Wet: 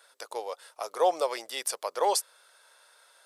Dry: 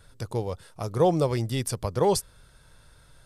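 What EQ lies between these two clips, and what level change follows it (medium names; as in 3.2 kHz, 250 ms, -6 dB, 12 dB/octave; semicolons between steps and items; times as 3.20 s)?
high-pass 550 Hz 24 dB/octave; +1.5 dB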